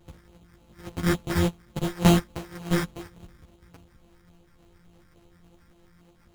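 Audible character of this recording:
a buzz of ramps at a fixed pitch in blocks of 256 samples
phaser sweep stages 4, 3.5 Hz, lowest notch 660–2,300 Hz
aliases and images of a low sample rate 3,500 Hz, jitter 0%
a shimmering, thickened sound

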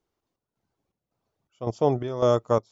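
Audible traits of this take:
chopped level 1.8 Hz, depth 65%, duty 65%

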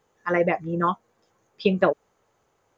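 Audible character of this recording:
background noise floor −69 dBFS
spectral slope −5.0 dB per octave

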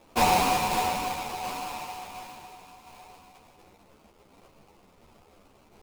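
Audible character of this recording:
a quantiser's noise floor 10 bits, dither triangular
tremolo saw down 1.4 Hz, depth 30%
aliases and images of a low sample rate 1,700 Hz, jitter 20%
a shimmering, thickened sound

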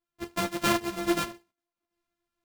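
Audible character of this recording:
a buzz of ramps at a fixed pitch in blocks of 128 samples
sample-and-hold tremolo 3.8 Hz
a shimmering, thickened sound

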